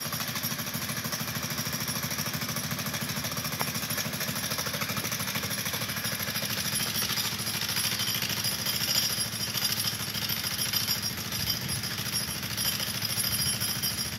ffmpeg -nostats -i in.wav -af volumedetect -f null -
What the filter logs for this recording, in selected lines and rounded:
mean_volume: -30.9 dB
max_volume: -9.4 dB